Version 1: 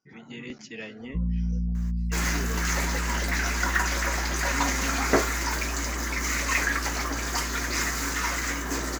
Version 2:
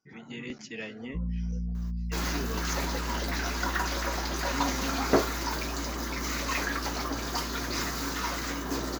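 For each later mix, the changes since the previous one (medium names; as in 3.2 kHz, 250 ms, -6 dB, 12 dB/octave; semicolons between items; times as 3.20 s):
first sound -5.0 dB; second sound: add ten-band graphic EQ 2 kHz -9 dB, 4 kHz +4 dB, 8 kHz -11 dB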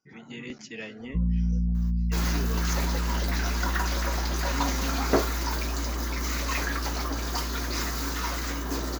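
first sound +7.0 dB; master: add treble shelf 9.9 kHz +4.5 dB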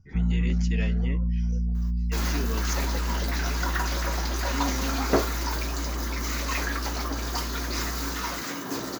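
first sound: entry -1.00 s; reverb: on, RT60 0.45 s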